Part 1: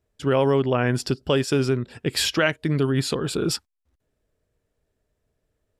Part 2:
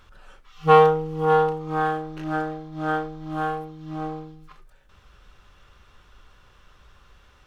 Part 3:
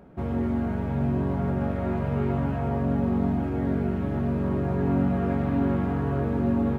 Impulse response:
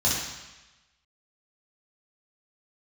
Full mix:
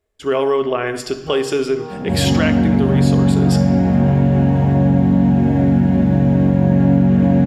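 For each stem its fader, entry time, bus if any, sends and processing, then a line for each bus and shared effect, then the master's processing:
+2.0 dB, 0.00 s, send -21.5 dB, bell 130 Hz -12 dB 1.6 oct; small resonant body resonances 400/650/1100/2100 Hz, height 8 dB
-5.5 dB, 0.60 s, no send, compressor, threshold -25 dBFS, peak gain reduction 15.5 dB
+2.0 dB, 1.90 s, send -5 dB, per-bin compression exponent 0.6; HPF 150 Hz 12 dB/oct; bell 1200 Hz -12.5 dB 0.42 oct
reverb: on, RT60 1.1 s, pre-delay 3 ms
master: compressor 2:1, threshold -12 dBFS, peak gain reduction 5 dB

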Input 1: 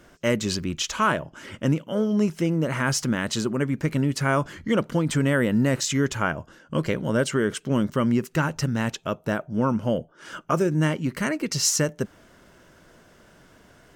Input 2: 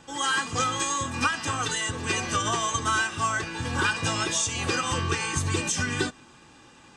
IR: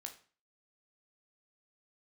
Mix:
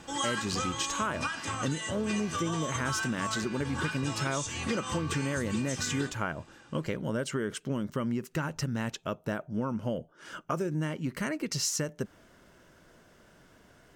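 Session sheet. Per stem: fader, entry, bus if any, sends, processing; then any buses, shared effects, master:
-5.0 dB, 0.00 s, no send, dry
0.0 dB, 0.00 s, send -8 dB, auto duck -12 dB, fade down 0.75 s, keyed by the first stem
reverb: on, RT60 0.40 s, pre-delay 13 ms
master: compressor, threshold -27 dBFS, peak gain reduction 7 dB

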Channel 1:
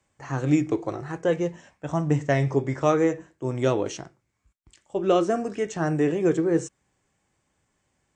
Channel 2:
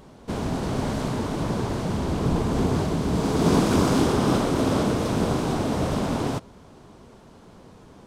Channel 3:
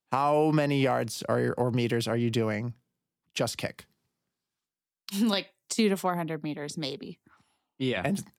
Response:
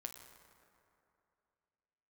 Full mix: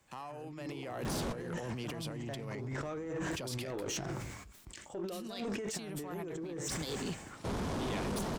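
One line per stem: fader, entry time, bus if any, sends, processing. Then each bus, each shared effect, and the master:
-7.5 dB, 0.00 s, bus A, no send, limiter -14.5 dBFS, peak gain reduction 6.5 dB; sustainer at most 50 dB/s
-1.0 dB, 1.05 s, no bus, no send, negative-ratio compressor -42 dBFS, ratio -0.5
-4.5 dB, 0.00 s, bus A, no send, high shelf 2400 Hz +6 dB
bus A: 0.0 dB, negative-ratio compressor -40 dBFS, ratio -1; limiter -27 dBFS, peak gain reduction 9.5 dB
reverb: off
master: soft clip -35 dBFS, distortion -10 dB; AGC gain up to 3 dB

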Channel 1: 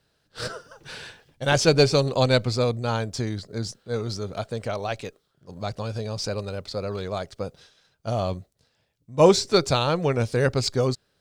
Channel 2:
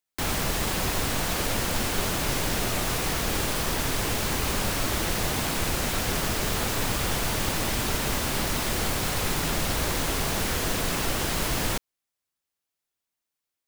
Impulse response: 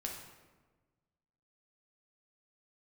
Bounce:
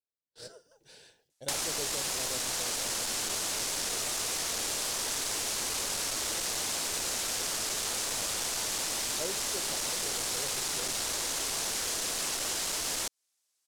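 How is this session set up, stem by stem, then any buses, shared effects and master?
-15.5 dB, 0.00 s, no send, bell 1200 Hz -12 dB 0.44 oct; gate with hold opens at -44 dBFS; tilt shelf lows +6.5 dB, about 940 Hz
+1.5 dB, 1.30 s, no send, LPF 8300 Hz 12 dB/oct; soft clip -23 dBFS, distortion -15 dB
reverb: off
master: tone controls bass -13 dB, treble +14 dB; compressor 6:1, threshold -30 dBFS, peak gain reduction 10.5 dB

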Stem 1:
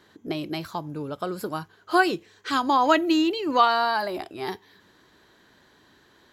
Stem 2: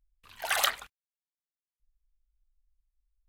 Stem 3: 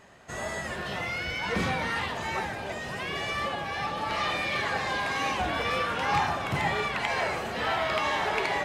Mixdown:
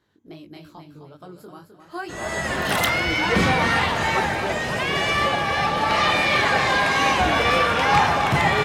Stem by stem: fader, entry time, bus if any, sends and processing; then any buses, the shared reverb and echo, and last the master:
-10.0 dB, 0.00 s, no send, echo send -7.5 dB, low shelf 160 Hz +8.5 dB; chorus 2.3 Hz, delay 17 ms, depth 6.5 ms
+1.0 dB, 2.20 s, no send, no echo send, dry
-3.0 dB, 1.80 s, no send, echo send -9 dB, AGC gain up to 12.5 dB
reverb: off
echo: feedback echo 0.259 s, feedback 34%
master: dry

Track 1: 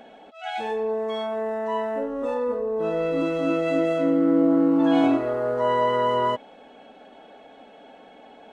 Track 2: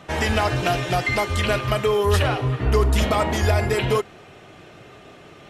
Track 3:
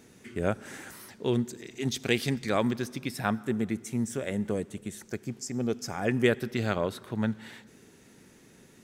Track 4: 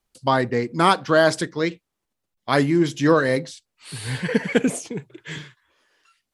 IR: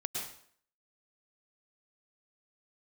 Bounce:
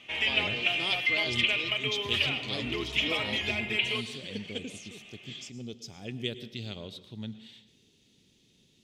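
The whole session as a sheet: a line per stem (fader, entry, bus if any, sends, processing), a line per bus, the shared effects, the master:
off
-3.5 dB, 0.00 s, send -13 dB, HPF 1200 Hz 6 dB/oct; resonant high shelf 3300 Hz -11.5 dB, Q 3
-9.0 dB, 0.00 s, send -13 dB, dry
-13.0 dB, 0.00 s, no send, HPF 280 Hz 12 dB/oct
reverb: on, RT60 0.60 s, pre-delay 97 ms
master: EQ curve 100 Hz 0 dB, 410 Hz -6 dB, 1600 Hz -16 dB, 3300 Hz +11 dB, 9700 Hz -8 dB

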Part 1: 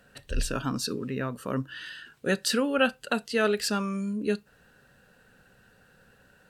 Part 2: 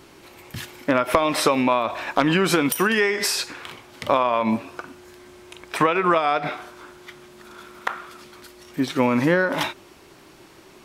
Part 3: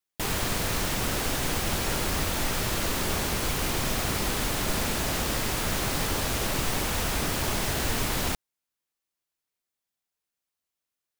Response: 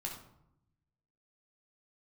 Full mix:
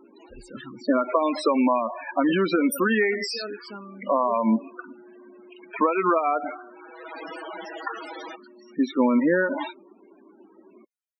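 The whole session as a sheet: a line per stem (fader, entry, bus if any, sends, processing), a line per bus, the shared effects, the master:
-8.5 dB, 0.00 s, no send, low shelf 72 Hz -8.5 dB
-2.0 dB, 0.00 s, no send, resonant low shelf 170 Hz -8 dB, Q 3
-2.5 dB, 0.00 s, no send, Bessel high-pass 320 Hz, order 8; comb 6.2 ms, depth 94%; auto duck -24 dB, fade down 0.35 s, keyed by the first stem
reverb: off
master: low shelf 180 Hz -6 dB; loudest bins only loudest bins 16

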